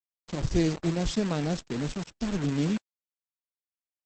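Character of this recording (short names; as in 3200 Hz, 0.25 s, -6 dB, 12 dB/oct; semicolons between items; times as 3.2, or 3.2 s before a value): a quantiser's noise floor 6-bit, dither none; Opus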